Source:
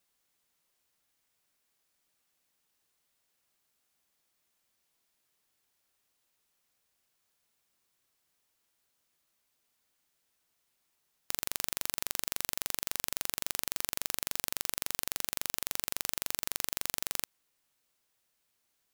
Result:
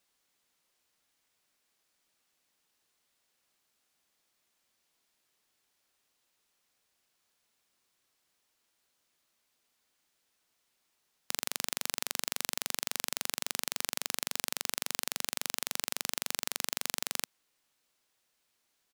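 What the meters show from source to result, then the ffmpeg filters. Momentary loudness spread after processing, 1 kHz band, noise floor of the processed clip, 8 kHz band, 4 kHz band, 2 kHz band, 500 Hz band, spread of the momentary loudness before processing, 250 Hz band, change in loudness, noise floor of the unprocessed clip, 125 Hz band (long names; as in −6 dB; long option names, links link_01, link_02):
1 LU, +2.0 dB, −78 dBFS, +1.0 dB, +2.5 dB, +2.5 dB, +2.0 dB, 1 LU, +1.5 dB, 0.0 dB, −78 dBFS, −1.0 dB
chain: -af "firequalizer=gain_entry='entry(110,0);entry(230,4);entry(4200,5);entry(15000,-1)':delay=0.05:min_phase=1,volume=-2dB"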